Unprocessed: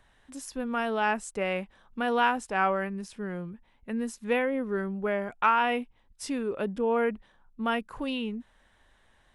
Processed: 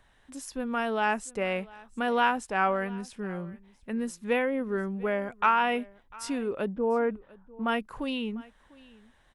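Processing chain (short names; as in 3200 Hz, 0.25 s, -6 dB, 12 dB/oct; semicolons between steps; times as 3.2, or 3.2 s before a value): 6.68–7.67 LPF 1200 Hz -> 2200 Hz 12 dB/oct; echo 0.698 s -22.5 dB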